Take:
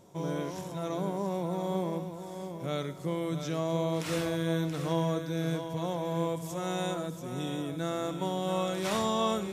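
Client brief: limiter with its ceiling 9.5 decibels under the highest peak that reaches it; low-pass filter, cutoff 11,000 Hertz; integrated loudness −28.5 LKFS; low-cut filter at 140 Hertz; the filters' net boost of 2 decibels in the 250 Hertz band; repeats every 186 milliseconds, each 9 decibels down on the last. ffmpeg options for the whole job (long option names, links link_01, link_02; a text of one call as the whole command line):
ffmpeg -i in.wav -af "highpass=140,lowpass=11000,equalizer=frequency=250:width_type=o:gain=4.5,alimiter=limit=-24dB:level=0:latency=1,aecho=1:1:186|372|558|744:0.355|0.124|0.0435|0.0152,volume=5dB" out.wav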